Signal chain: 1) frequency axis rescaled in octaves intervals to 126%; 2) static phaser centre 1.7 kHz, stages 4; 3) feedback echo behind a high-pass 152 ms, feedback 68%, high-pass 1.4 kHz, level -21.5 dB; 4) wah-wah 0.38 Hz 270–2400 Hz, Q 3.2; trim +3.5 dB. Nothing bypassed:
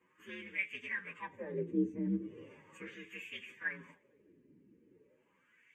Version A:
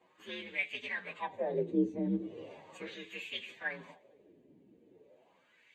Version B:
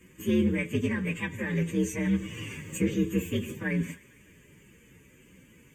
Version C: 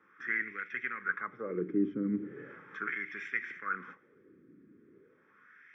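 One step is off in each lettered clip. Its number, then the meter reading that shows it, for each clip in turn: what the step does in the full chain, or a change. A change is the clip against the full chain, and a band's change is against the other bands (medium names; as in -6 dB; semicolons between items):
2, 4 kHz band +6.5 dB; 4, 2 kHz band -6.5 dB; 1, 1 kHz band +9.0 dB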